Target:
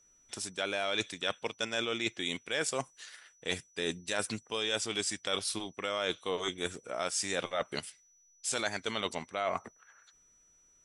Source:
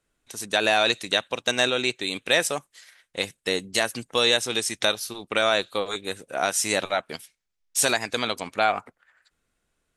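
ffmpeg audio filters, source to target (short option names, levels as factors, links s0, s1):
-af "asetrate=40517,aresample=44100,areverse,acompressor=threshold=0.0316:ratio=6,areverse,aeval=exprs='val(0)+0.000708*sin(2*PI*5900*n/s)':c=same"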